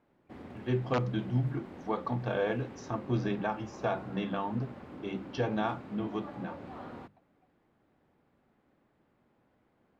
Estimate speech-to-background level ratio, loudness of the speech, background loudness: 12.0 dB, -34.5 LUFS, -46.5 LUFS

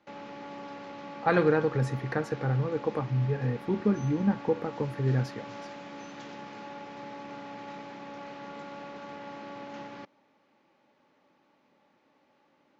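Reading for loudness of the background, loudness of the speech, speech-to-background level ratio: -43.0 LUFS, -29.0 LUFS, 14.0 dB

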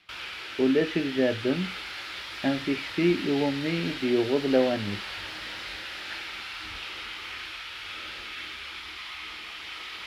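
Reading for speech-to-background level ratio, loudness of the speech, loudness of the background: 8.5 dB, -27.0 LUFS, -35.5 LUFS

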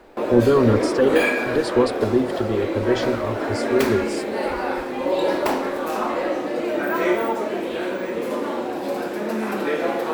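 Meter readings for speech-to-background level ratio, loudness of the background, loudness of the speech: 2.5 dB, -24.0 LUFS, -21.5 LUFS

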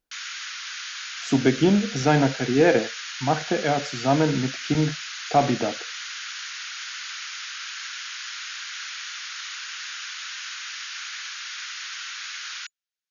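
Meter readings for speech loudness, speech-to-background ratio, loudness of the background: -23.0 LUFS, 9.5 dB, -32.5 LUFS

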